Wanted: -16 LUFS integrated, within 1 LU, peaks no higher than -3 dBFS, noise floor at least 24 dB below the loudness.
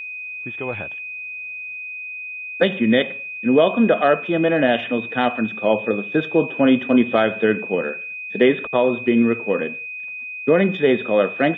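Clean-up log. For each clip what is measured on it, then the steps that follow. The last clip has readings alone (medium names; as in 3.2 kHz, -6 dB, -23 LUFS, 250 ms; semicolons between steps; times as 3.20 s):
steady tone 2.5 kHz; tone level -29 dBFS; loudness -20.0 LUFS; peak level -3.0 dBFS; loudness target -16.0 LUFS
-> band-stop 2.5 kHz, Q 30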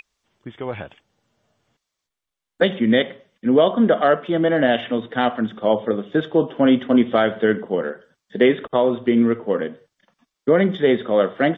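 steady tone not found; loudness -19.0 LUFS; peak level -3.5 dBFS; loudness target -16.0 LUFS
-> trim +3 dB; peak limiter -3 dBFS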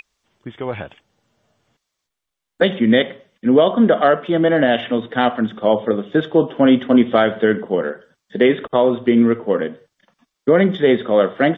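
loudness -16.5 LUFS; peak level -3.0 dBFS; noise floor -79 dBFS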